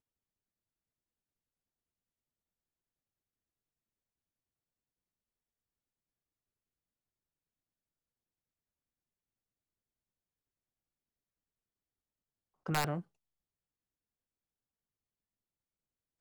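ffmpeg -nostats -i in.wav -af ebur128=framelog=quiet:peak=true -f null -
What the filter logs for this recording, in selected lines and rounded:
Integrated loudness:
  I:         -35.9 LUFS
  Threshold: -47.1 LUFS
Loudness range:
  LRA:         3.5 LU
  Threshold: -63.3 LUFS
  LRA low:   -46.3 LUFS
  LRA high:  -42.8 LUFS
True peak:
  Peak:      -20.6 dBFS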